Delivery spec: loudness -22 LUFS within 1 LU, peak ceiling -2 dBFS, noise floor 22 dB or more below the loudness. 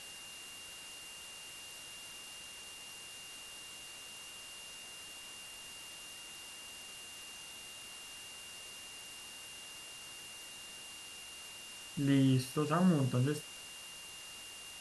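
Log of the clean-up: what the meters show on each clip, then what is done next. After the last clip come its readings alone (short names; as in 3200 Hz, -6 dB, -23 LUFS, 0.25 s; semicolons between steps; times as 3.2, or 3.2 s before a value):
steady tone 2800 Hz; tone level -50 dBFS; noise floor -50 dBFS; noise floor target -62 dBFS; loudness -40.0 LUFS; peak -19.0 dBFS; loudness target -22.0 LUFS
-> notch 2800 Hz, Q 30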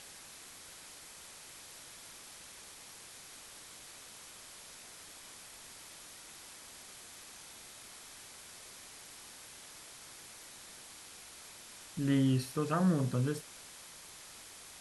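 steady tone none; noise floor -52 dBFS; noise floor target -63 dBFS
-> denoiser 11 dB, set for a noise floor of -52 dBFS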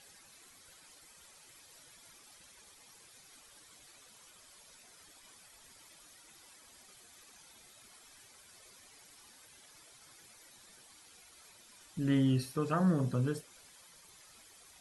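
noise floor -60 dBFS; loudness -32.0 LUFS; peak -19.5 dBFS; loudness target -22.0 LUFS
-> gain +10 dB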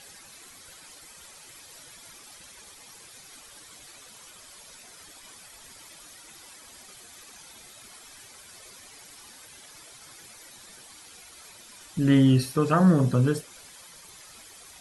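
loudness -22.0 LUFS; peak -9.5 dBFS; noise floor -50 dBFS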